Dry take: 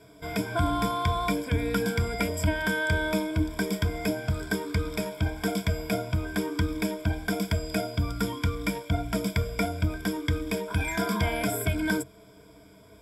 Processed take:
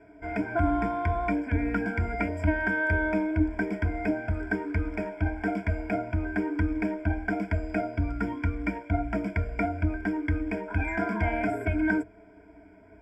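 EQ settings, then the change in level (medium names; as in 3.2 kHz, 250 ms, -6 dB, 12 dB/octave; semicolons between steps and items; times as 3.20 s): low-pass 2.2 kHz 12 dB/octave; static phaser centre 760 Hz, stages 8; +3.5 dB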